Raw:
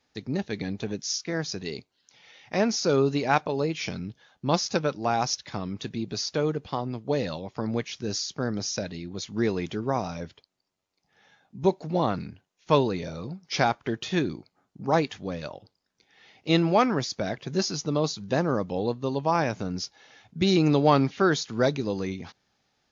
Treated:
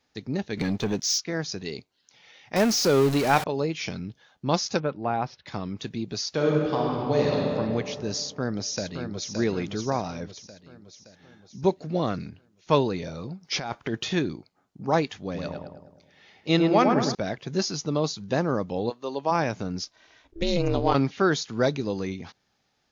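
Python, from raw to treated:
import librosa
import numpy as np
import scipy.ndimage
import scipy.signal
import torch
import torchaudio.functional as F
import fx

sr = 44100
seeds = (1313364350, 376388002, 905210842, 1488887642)

y = fx.leveller(x, sr, passes=2, at=(0.57, 1.2))
y = fx.zero_step(y, sr, step_db=-25.0, at=(2.56, 3.44))
y = fx.air_absorb(y, sr, metres=420.0, at=(4.8, 5.46))
y = fx.reverb_throw(y, sr, start_s=6.29, length_s=1.17, rt60_s=2.5, drr_db=-3.0)
y = fx.echo_throw(y, sr, start_s=8.2, length_s=1.12, ms=570, feedback_pct=55, wet_db=-6.0)
y = fx.peak_eq(y, sr, hz=880.0, db=-10.0, octaves=0.38, at=(11.71, 12.26))
y = fx.over_compress(y, sr, threshold_db=-29.0, ratio=-1.0, at=(13.41, 14.14))
y = fx.echo_filtered(y, sr, ms=105, feedback_pct=56, hz=1600.0, wet_db=-3.0, at=(15.24, 17.15))
y = fx.highpass(y, sr, hz=fx.line((18.89, 610.0), (19.3, 230.0)), slope=12, at=(18.89, 19.3), fade=0.02)
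y = fx.ring_mod(y, sr, carrier_hz=170.0, at=(19.84, 20.93), fade=0.02)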